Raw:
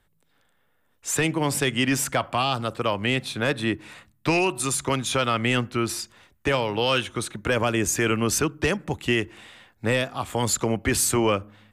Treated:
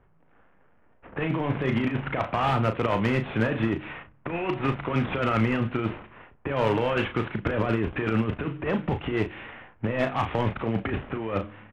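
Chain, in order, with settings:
variable-slope delta modulation 16 kbit/s
compressor whose output falls as the input rises −27 dBFS, ratio −0.5
gain into a clipping stage and back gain 20 dB
double-tracking delay 36 ms −8 dB
low-pass that shuts in the quiet parts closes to 1,300 Hz, open at −23 dBFS
level +3 dB

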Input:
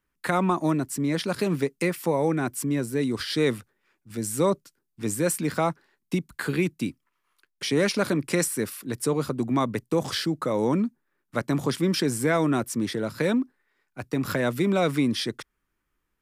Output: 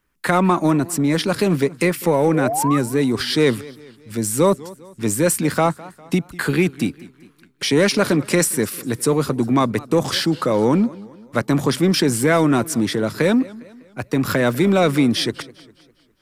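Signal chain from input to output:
in parallel at −8 dB: soft clipping −25.5 dBFS, distortion −9 dB
on the sum: sound drawn into the spectrogram rise, 0:02.34–0:02.78, 450–1,300 Hz −28 dBFS
feedback echo with a swinging delay time 202 ms, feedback 46%, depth 168 cents, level −20.5 dB
level +5.5 dB

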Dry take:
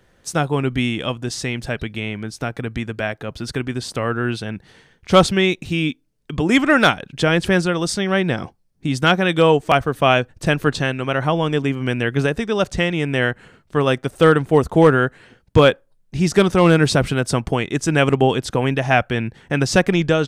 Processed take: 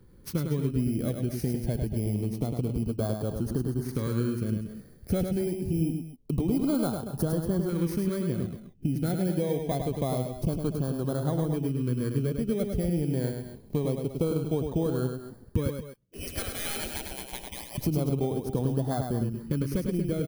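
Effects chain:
samples in bit-reversed order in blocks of 16 samples
0:15.70–0:17.78: gate on every frequency bin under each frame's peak −20 dB weak
tilt shelving filter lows +8 dB, about 800 Hz
downward compressor 6 to 1, threshold −22 dBFS, peak gain reduction 18 dB
auto-filter notch saw up 0.26 Hz 640–2,600 Hz
multi-tap delay 103/232/237 ms −5.5/−15.5/−14 dB
level −3.5 dB

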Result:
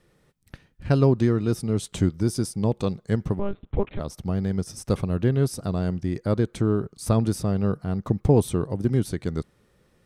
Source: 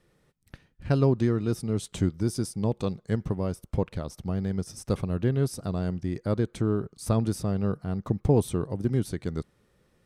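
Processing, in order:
0:03.39–0:04.00: one-pitch LPC vocoder at 8 kHz 200 Hz
level +3.5 dB

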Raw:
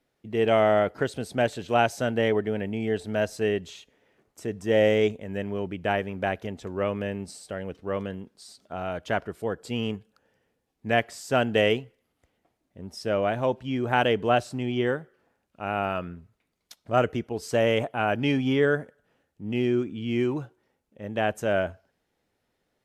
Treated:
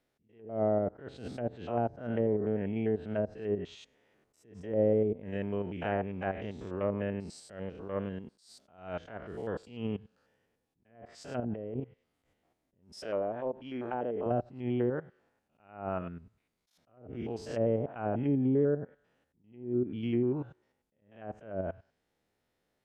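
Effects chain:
spectrum averaged block by block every 100 ms
treble cut that deepens with the level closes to 530 Hz, closed at −21 dBFS
0:11.40–0:11.80: compressor whose output falls as the input rises −34 dBFS, ratio −1
0:12.99–0:14.26: parametric band 120 Hz −14 dB 1.9 octaves
level that may rise only so fast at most 120 dB per second
level −2.5 dB

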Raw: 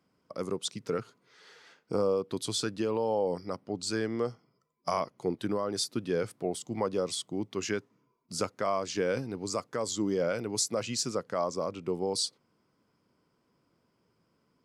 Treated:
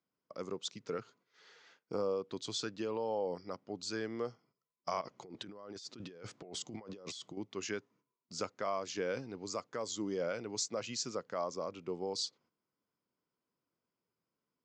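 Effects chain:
elliptic low-pass filter 7,000 Hz, stop band 60 dB
noise gate −60 dBFS, range −10 dB
low-shelf EQ 190 Hz −6.5 dB
0:05.01–0:07.37: compressor whose output falls as the input rises −43 dBFS, ratio −1
level −5 dB

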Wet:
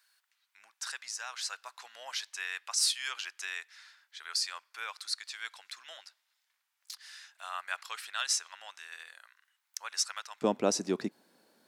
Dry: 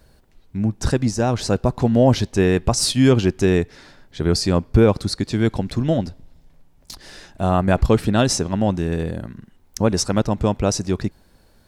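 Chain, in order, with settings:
high-pass filter 1,300 Hz 24 dB per octave, from 0:10.42 220 Hz
level −7 dB

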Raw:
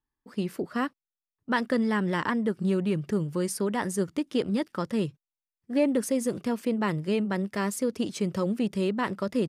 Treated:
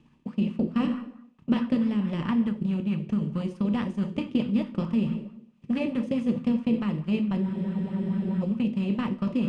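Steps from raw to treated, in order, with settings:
compressor on every frequency bin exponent 0.6
transient designer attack +10 dB, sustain −8 dB
drawn EQ curve 160 Hz 0 dB, 400 Hz −17 dB, 740 Hz −15 dB, 1,700 Hz −20 dB, 2,600 Hz −2 dB, 4,400 Hz −11 dB
dense smooth reverb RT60 0.75 s, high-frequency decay 0.75×, DRR 6 dB
reversed playback
downward compressor 6 to 1, threshold −34 dBFS, peak gain reduction 15 dB
reversed playback
high-frequency loss of the air 110 metres
hollow resonant body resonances 230/1,200 Hz, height 8 dB
frozen spectrum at 0:07.44, 0.97 s
auto-filter bell 4.6 Hz 340–1,500 Hz +9 dB
level +5 dB

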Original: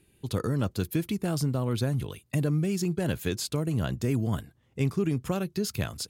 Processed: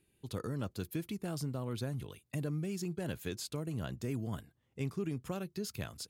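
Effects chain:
low-shelf EQ 140 Hz −3 dB
level −9 dB

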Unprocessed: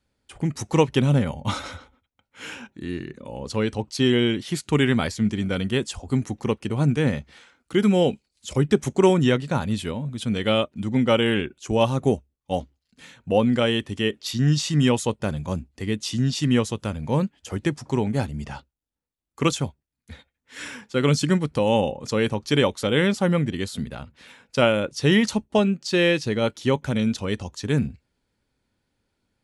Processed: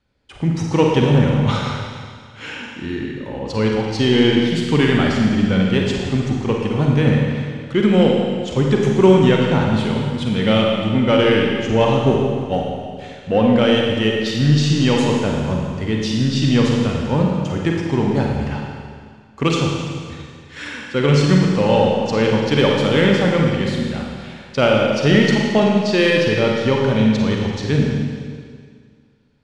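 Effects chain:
low-pass filter 4,700 Hz 12 dB per octave
in parallel at −4 dB: soft clipping −19.5 dBFS, distortion −10 dB
on the sum: convolution reverb RT60 2.0 s, pre-delay 37 ms, DRR −1 dB

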